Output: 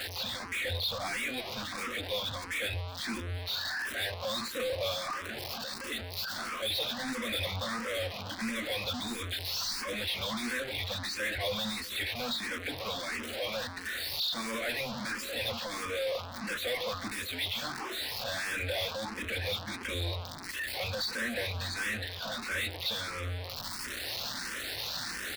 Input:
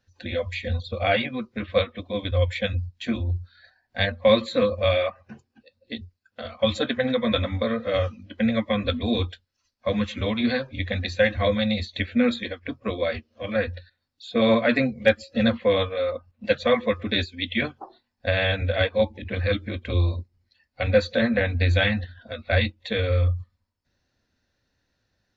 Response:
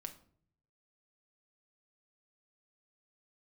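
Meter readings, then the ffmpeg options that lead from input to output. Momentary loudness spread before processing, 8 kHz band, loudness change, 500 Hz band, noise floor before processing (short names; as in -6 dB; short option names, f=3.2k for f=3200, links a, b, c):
11 LU, n/a, -9.0 dB, -14.0 dB, -76 dBFS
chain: -filter_complex "[0:a]aeval=exprs='val(0)+0.5*0.0355*sgn(val(0))':c=same,anlmdn=0.158,equalizer=f=440:w=0.35:g=-10,acrossover=split=320[a][b];[a]flanger=delay=10:depth=7.2:regen=88:speed=0.12:shape=sinusoidal[c];[b]asoftclip=type=tanh:threshold=-25.5dB[d];[c][d]amix=inputs=2:normalize=0,asplit=2[e][f];[f]highpass=f=720:p=1,volume=29dB,asoftclip=type=tanh:threshold=-17.5dB[g];[e][g]amix=inputs=2:normalize=0,lowpass=f=3.2k:p=1,volume=-6dB,aexciter=amount=1.7:drive=5.1:freq=3.8k,asplit=2[h][i];[i]aecho=0:1:366:0.112[j];[h][j]amix=inputs=2:normalize=0,asplit=2[k][l];[l]afreqshift=1.5[m];[k][m]amix=inputs=2:normalize=1,volume=-7dB"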